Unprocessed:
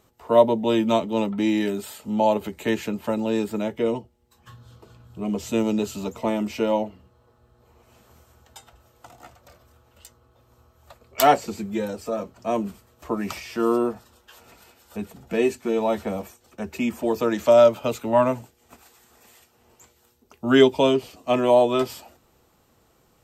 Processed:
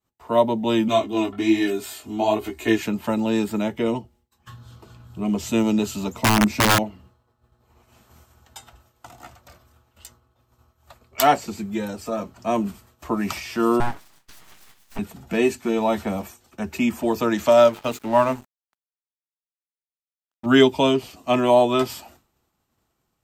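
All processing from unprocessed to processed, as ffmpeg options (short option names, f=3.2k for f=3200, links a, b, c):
-filter_complex "[0:a]asettb=1/sr,asplit=3[a][b][c];[a]atrim=end=0.884[d];[b]atrim=start=0.88:end=2.82,asetpts=PTS-STARTPTS,afade=t=in:d=0.004:c=qsin,afade=t=out:st=1.936:d=0.004:c=qsin,aecho=1:1:2.8:0.93,atrim=end_sample=85554,flanger=delay=15.5:depth=6.5:speed=1.2[e];[c]atrim=start=2.816[f];[d][e]acrossfade=d=0.004:c1=hsin:c2=qsin[g];[g][f]acrossfade=d=0.004:c1=qsin:c2=hsin,asettb=1/sr,asplit=3[h][i][j];[h]atrim=end=6.224[k];[i]atrim=start=6.22:end=6.79,asetpts=PTS-STARTPTS,afade=t=in:d=0.004:c=qsin,afade=t=out:st=0.566:d=0.004:c=qsin,equalizer=f=180:t=o:w=2.4:g=6,bandreject=f=3k:w=5.3,aeval=exprs='(mod(4.73*val(0)+1,2)-1)/4.73':c=same[l];[j]atrim=start=6.786[m];[k][l]acrossfade=d=0.004:c1=hsin:c2=qsin[n];[n][m]acrossfade=d=0.004:c1=qsin:c2=hsin,asettb=1/sr,asplit=3[o][p][q];[o]atrim=end=13.804[r];[p]atrim=start=13.8:end=14.99,asetpts=PTS-STARTPTS,afade=t=in:d=0.004:c=qsin,afade=t=out:st=1.186:d=0.004:c=qsin,highpass=f=110:w=0.5412,highpass=f=110:w=1.3066,aecho=1:1:6.4:0.38,atrim=end_sample=52479,aeval=exprs='abs(val(0))':c=same[s];[q]atrim=start=14.986[t];[r][s]acrossfade=d=0.004:c1=hsin:c2=qsin[u];[u][t]acrossfade=d=0.004:c1=qsin:c2=hsin,asettb=1/sr,asplit=3[v][w][x];[v]atrim=end=17.494[y];[w]atrim=start=17.49:end=20.46,asetpts=PTS-STARTPTS,afade=t=in:d=0.004:c=qsin,afade=t=out:st=2.966:d=0.004:c=qsin,equalizer=f=74:w=0.96:g=-8,bandreject=f=50:t=h:w=6,bandreject=f=100:t=h:w=6,bandreject=f=150:t=h:w=6,bandreject=f=200:t=h:w=6,bandreject=f=250:t=h:w=6,bandreject=f=300:t=h:w=6,bandreject=f=350:t=h:w=6,bandreject=f=400:t=h:w=6,bandreject=f=450:t=h:w=6,aeval=exprs='sgn(val(0))*max(abs(val(0))-0.00841,0)':c=same[z];[x]atrim=start=20.456[aa];[y][z]acrossfade=d=0.004:c1=hsin:c2=qsin[ab];[ab][aa]acrossfade=d=0.004:c1=qsin:c2=hsin,agate=range=-33dB:threshold=-51dB:ratio=3:detection=peak,equalizer=f=490:t=o:w=0.56:g=-7,dynaudnorm=f=230:g=5:m=4dB"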